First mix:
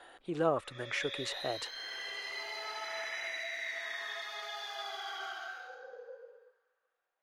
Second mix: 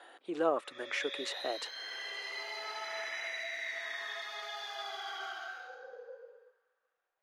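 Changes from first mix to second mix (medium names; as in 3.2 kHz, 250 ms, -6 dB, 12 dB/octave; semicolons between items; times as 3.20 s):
speech: add high-pass 250 Hz 24 dB/octave; master: add treble shelf 9.8 kHz -4 dB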